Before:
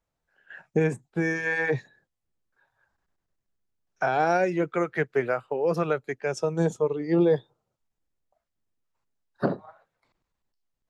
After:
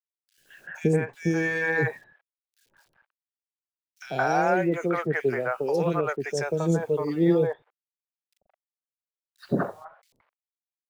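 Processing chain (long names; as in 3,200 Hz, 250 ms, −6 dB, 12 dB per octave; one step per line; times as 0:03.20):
in parallel at +1 dB: downward compressor 8 to 1, threshold −32 dBFS, peak gain reduction 15 dB
on the sum: bit reduction 10 bits
three-band delay without the direct sound highs, lows, mids 90/170 ms, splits 560/2,400 Hz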